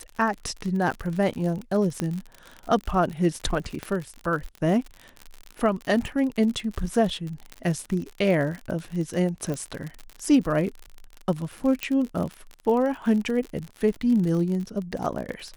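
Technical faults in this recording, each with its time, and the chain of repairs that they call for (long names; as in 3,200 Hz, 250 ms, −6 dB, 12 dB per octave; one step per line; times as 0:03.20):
surface crackle 59 per second −30 dBFS
0:02.00: click −13 dBFS
0:03.83: click −17 dBFS
0:09.54: click −19 dBFS
0:11.83: click −11 dBFS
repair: click removal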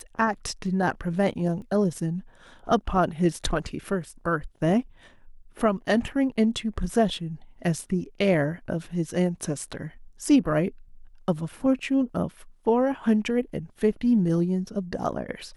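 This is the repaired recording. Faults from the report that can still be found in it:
0:11.83: click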